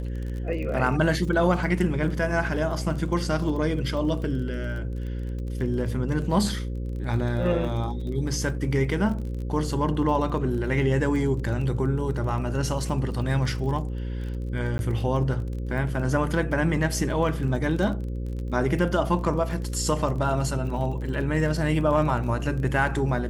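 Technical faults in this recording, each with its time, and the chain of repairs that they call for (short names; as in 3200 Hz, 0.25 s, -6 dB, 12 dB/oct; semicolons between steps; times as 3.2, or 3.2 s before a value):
buzz 60 Hz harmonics 9 -30 dBFS
crackle 28/s -34 dBFS
14.78–14.79 gap 11 ms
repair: de-click; de-hum 60 Hz, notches 9; interpolate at 14.78, 11 ms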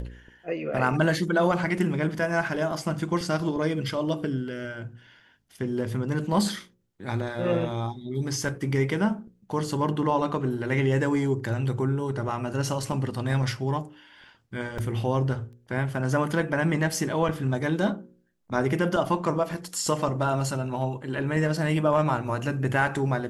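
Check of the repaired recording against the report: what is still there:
none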